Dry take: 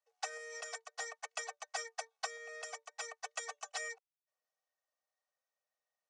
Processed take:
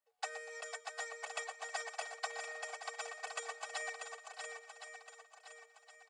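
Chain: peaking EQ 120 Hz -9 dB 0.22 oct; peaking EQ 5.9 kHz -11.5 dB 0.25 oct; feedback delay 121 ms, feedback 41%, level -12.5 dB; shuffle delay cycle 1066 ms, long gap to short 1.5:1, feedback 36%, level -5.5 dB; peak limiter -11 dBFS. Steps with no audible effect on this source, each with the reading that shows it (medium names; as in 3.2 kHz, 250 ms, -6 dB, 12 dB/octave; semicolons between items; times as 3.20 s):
peaking EQ 120 Hz: input has nothing below 400 Hz; peak limiter -11 dBFS: peak at its input -25.0 dBFS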